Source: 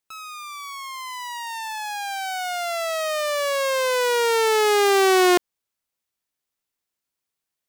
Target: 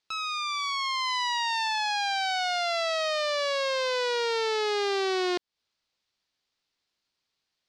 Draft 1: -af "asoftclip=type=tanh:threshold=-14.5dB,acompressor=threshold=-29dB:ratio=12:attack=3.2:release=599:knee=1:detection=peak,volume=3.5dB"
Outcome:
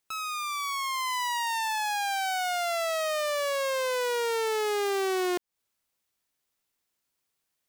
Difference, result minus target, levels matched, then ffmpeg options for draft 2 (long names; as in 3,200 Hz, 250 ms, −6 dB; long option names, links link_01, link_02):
4,000 Hz band −4.0 dB
-af "asoftclip=type=tanh:threshold=-14.5dB,acompressor=threshold=-29dB:ratio=12:attack=3.2:release=599:knee=1:detection=peak,lowpass=frequency=4500:width_type=q:width=2.2,volume=3.5dB"